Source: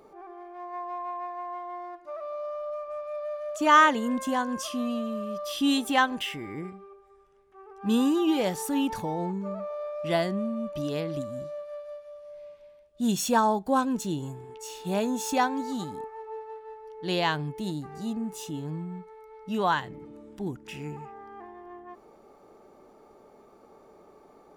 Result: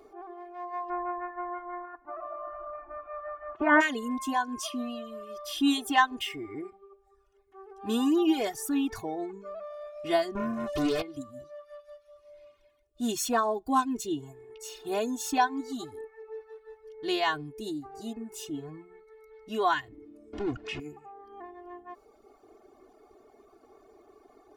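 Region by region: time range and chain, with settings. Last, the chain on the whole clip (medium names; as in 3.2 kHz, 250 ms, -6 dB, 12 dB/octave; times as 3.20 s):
0.88–3.80 s: spectral peaks clipped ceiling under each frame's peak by 17 dB + low-pass 1.6 kHz 24 dB/octave + peaking EQ 870 Hz +13.5 dB 0.3 oct
10.35–11.02 s: peaking EQ 1.3 kHz -9 dB 0.43 oct + waveshaping leveller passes 3 + loudspeaker Doppler distortion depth 0.12 ms
20.33–20.80 s: power-law waveshaper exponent 0.5 + distance through air 140 m
whole clip: reverb removal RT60 0.97 s; comb 2.8 ms, depth 91%; trim -3 dB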